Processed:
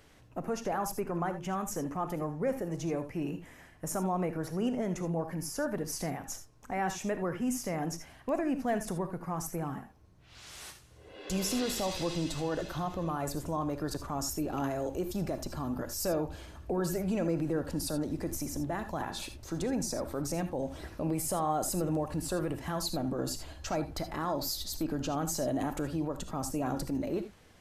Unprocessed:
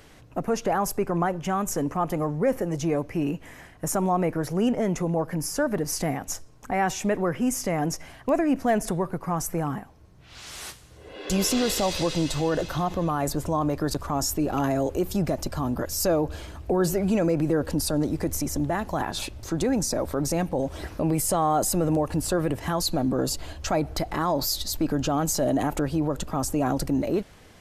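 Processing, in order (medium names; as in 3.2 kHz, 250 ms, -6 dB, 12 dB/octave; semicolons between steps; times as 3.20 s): gated-style reverb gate 100 ms rising, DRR 9 dB; trim -8.5 dB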